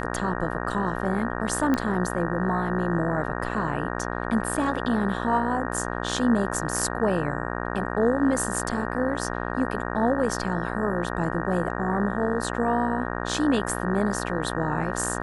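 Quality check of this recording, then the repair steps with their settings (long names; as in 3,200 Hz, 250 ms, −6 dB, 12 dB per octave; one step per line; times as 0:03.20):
mains buzz 60 Hz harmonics 31 −30 dBFS
0:01.74: click −12 dBFS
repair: click removal
hum removal 60 Hz, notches 31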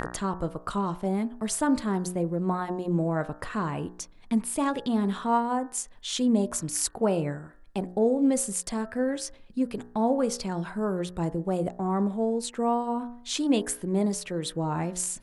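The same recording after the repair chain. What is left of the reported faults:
none of them is left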